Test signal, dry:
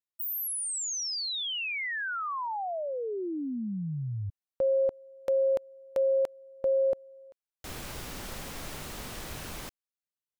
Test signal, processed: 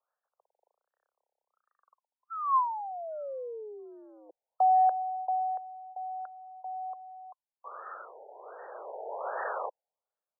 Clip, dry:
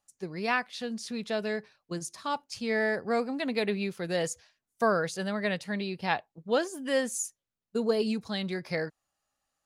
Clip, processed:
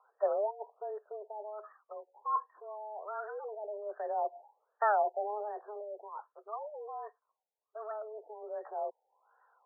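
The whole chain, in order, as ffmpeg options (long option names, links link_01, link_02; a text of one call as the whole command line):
ffmpeg -i in.wav -af "areverse,acompressor=threshold=-39dB:ratio=16:attack=0.21:release=37:knee=6:detection=rms,areverse,aphaser=in_gain=1:out_gain=1:delay=1.2:decay=0.74:speed=0.21:type=sinusoidal,highpass=frequency=300:width_type=q:width=0.5412,highpass=frequency=300:width_type=q:width=1.307,lowpass=frequency=3500:width_type=q:width=0.5176,lowpass=frequency=3500:width_type=q:width=0.7071,lowpass=frequency=3500:width_type=q:width=1.932,afreqshift=210,afftfilt=real='re*lt(b*sr/1024,900*pow(1900/900,0.5+0.5*sin(2*PI*1.3*pts/sr)))':imag='im*lt(b*sr/1024,900*pow(1900/900,0.5+0.5*sin(2*PI*1.3*pts/sr)))':win_size=1024:overlap=0.75,volume=8dB" out.wav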